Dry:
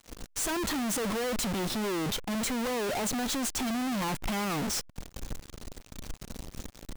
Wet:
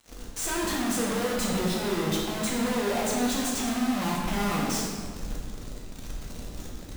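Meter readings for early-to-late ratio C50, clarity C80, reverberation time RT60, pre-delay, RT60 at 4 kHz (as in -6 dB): 0.5 dB, 2.5 dB, 1.7 s, 7 ms, 1.2 s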